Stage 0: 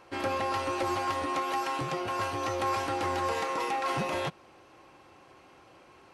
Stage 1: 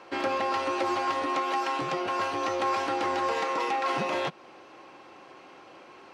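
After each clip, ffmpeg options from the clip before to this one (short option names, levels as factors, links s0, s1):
-filter_complex "[0:a]acrossover=split=170 6900:gain=0.141 1 0.178[s0][s1][s2];[s0][s1][s2]amix=inputs=3:normalize=0,asplit=2[s3][s4];[s4]acompressor=threshold=0.0126:ratio=6,volume=1.06[s5];[s3][s5]amix=inputs=2:normalize=0"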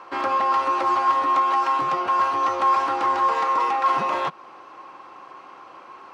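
-filter_complex "[0:a]equalizer=f=1100:t=o:w=0.83:g=13,asplit=2[s0][s1];[s1]asoftclip=type=tanh:threshold=0.1,volume=0.282[s2];[s0][s2]amix=inputs=2:normalize=0,volume=0.708"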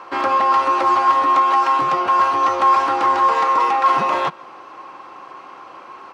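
-filter_complex "[0:a]asplit=2[s0][s1];[s1]adelay=151.6,volume=0.0562,highshelf=f=4000:g=-3.41[s2];[s0][s2]amix=inputs=2:normalize=0,volume=1.78"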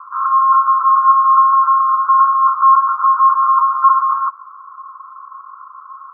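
-af "asuperpass=centerf=1200:order=8:qfactor=3.3,volume=1.88"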